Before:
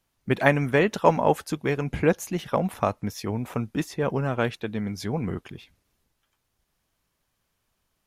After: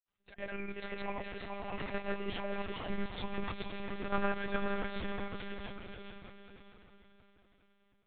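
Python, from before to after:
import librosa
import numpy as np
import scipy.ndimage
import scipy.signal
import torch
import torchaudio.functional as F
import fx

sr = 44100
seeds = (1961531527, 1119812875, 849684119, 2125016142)

p1 = fx.doppler_pass(x, sr, speed_mps=7, closest_m=4.3, pass_at_s=3.42)
p2 = scipy.signal.sosfilt(scipy.signal.butter(4, 64.0, 'highpass', fs=sr, output='sos'), p1)
p3 = fx.peak_eq(p2, sr, hz=200.0, db=-11.5, octaves=2.9)
p4 = fx.rider(p3, sr, range_db=3, speed_s=2.0)
p5 = fx.auto_swell(p4, sr, attack_ms=163.0)
p6 = p5 + fx.echo_diffused(p5, sr, ms=543, feedback_pct=41, wet_db=-5.5, dry=0)
p7 = fx.granulator(p6, sr, seeds[0], grain_ms=100.0, per_s=20.0, spray_ms=100.0, spread_st=0)
p8 = p7 + 10.0 ** (-5.5 / 20.0) * np.pad(p7, (int(424 * sr / 1000.0), 0))[:len(p7)]
p9 = fx.pitch_keep_formants(p8, sr, semitones=12.0)
p10 = fx.lpc_monotone(p9, sr, seeds[1], pitch_hz=200.0, order=10)
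y = p10 * librosa.db_to_amplitude(8.0)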